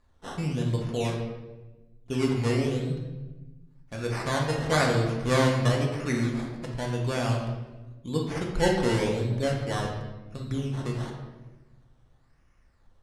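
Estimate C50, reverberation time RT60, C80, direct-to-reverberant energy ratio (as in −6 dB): 3.5 dB, 1.1 s, 6.0 dB, −1.5 dB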